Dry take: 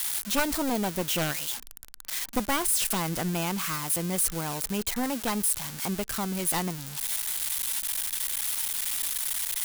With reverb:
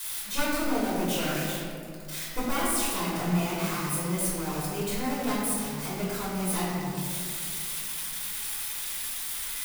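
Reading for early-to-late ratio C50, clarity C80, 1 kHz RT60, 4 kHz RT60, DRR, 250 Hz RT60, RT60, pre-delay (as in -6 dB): -2.0 dB, 0.0 dB, 2.0 s, 1.1 s, -9.5 dB, 2.8 s, 2.4 s, 3 ms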